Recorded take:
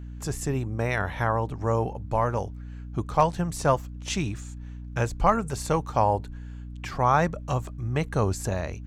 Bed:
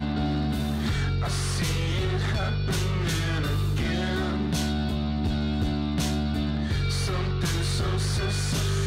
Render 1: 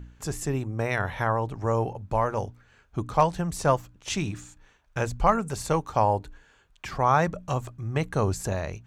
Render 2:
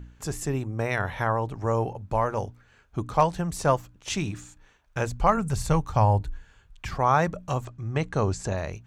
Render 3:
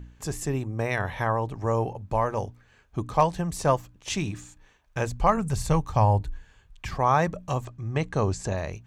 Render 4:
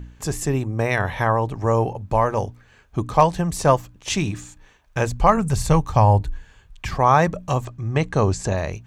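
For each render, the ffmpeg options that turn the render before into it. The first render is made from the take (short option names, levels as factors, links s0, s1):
-af "bandreject=f=60:t=h:w=4,bandreject=f=120:t=h:w=4,bandreject=f=180:t=h:w=4,bandreject=f=240:t=h:w=4,bandreject=f=300:t=h:w=4"
-filter_complex "[0:a]asplit=3[s0][s1][s2];[s0]afade=t=out:st=5.36:d=0.02[s3];[s1]asubboost=boost=4:cutoff=160,afade=t=in:st=5.36:d=0.02,afade=t=out:st=6.93:d=0.02[s4];[s2]afade=t=in:st=6.93:d=0.02[s5];[s3][s4][s5]amix=inputs=3:normalize=0,asplit=3[s6][s7][s8];[s6]afade=t=out:st=7.64:d=0.02[s9];[s7]lowpass=f=7900:w=0.5412,lowpass=f=7900:w=1.3066,afade=t=in:st=7.64:d=0.02,afade=t=out:st=8.56:d=0.02[s10];[s8]afade=t=in:st=8.56:d=0.02[s11];[s9][s10][s11]amix=inputs=3:normalize=0"
-af "bandreject=f=1400:w=11"
-af "volume=2,alimiter=limit=0.708:level=0:latency=1"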